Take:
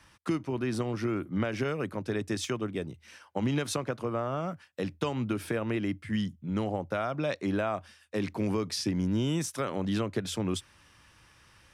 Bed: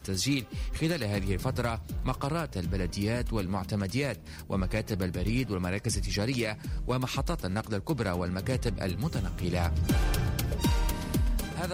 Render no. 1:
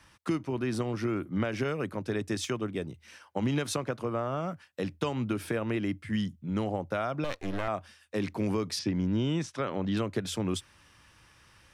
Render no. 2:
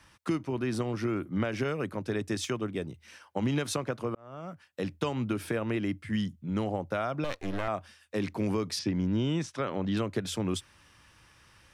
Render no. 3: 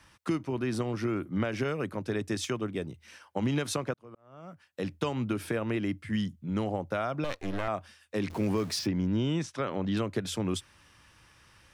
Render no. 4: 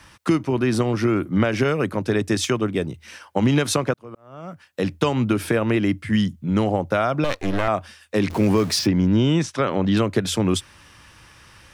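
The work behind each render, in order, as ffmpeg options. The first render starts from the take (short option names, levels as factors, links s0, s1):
-filter_complex "[0:a]asettb=1/sr,asplit=3[s0][s1][s2];[s0]atrim=end=7.244[s3];[s1]atrim=start=7.24:end=7.68,asetpts=PTS-STARTPTS,afade=t=in:d=0.004:c=qsin,afade=t=out:st=0.436:d=0.004:c=qsin,aeval=exprs='max(val(0),0)':c=same[s4];[s2]atrim=start=7.676[s5];[s3][s4]acrossfade=d=0.004:c1=hsin:c2=qsin[s6];[s6][s5]acrossfade=d=0.004:c1=qsin:c2=hsin,asettb=1/sr,asplit=3[s7][s8][s9];[s7]atrim=end=8.794[s10];[s8]atrim=start=8.79:end=9.97,asetpts=PTS-STARTPTS,afade=t=in:d=0.004:c=qsin,afade=t=out:st=1.176:d=0.004:c=qsin,lowpass=4400[s11];[s9]atrim=start=9.966[s12];[s10][s11]acrossfade=d=0.004:c1=hsin:c2=qsin[s13];[s13][s12]acrossfade=d=0.004:c1=qsin:c2=hsin"
-filter_complex "[0:a]asplit=2[s0][s1];[s0]atrim=end=4.15,asetpts=PTS-STARTPTS,afade=t=out:st=4.146:d=0.004:c=hsin[s2];[s1]atrim=start=4.15,asetpts=PTS-STARTPTS,afade=t=in:d=0.7[s3];[s2][s3]concat=n=2:v=0:a=1"
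-filter_complex "[0:a]asettb=1/sr,asplit=3[s0][s1][s2];[s0]atrim=end=8.304[s3];[s1]atrim=start=8.3:end=8.87,asetpts=PTS-STARTPTS,afade=t=in:d=0.004:c=qsin,afade=t=out:st=0.566:d=0.004:c=qsin,aeval=exprs='val(0)+0.5*0.01*sgn(val(0))':c=same[s4];[s2]atrim=start=8.866[s5];[s3][s4]acrossfade=d=0.004:c1=hsin:c2=qsin[s6];[s6][s5]acrossfade=d=0.004:c1=qsin:c2=hsin,asplit=2[s7][s8];[s7]atrim=end=3.94,asetpts=PTS-STARTPTS,afade=t=out:st=3.936:d=0.004:c=hsin[s9];[s8]atrim=start=3.94,asetpts=PTS-STARTPTS,afade=t=in:d=0.94[s10];[s9][s10]concat=n=2:v=0:a=1"
-af "volume=3.35"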